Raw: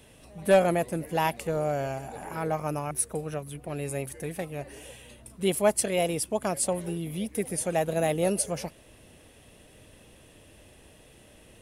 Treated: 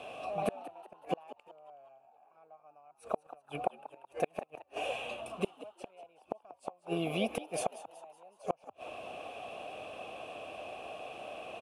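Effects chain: in parallel at 0 dB: compressor 6:1, threshold -33 dBFS, peak gain reduction 16.5 dB; on the sum: vowel filter a; flipped gate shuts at -35 dBFS, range -40 dB; frequency-shifting echo 0.187 s, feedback 46%, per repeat +85 Hz, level -15.5 dB; gain +17.5 dB

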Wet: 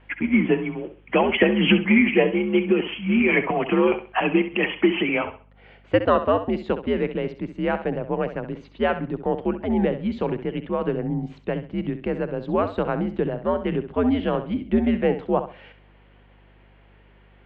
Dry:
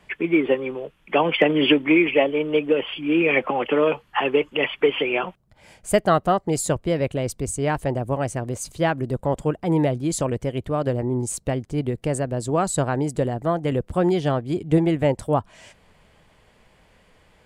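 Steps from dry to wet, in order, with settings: flutter echo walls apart 11.3 m, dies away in 0.36 s; mistuned SSB -99 Hz 230–3400 Hz; hum 50 Hz, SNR 31 dB

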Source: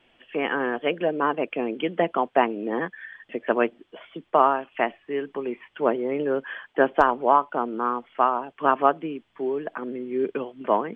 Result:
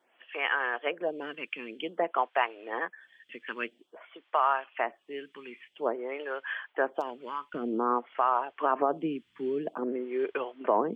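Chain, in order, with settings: HPF 1400 Hz 6 dB/oct, from 7.54 s 190 Hz; limiter -15.5 dBFS, peak gain reduction 11.5 dB; photocell phaser 0.51 Hz; gain +3 dB

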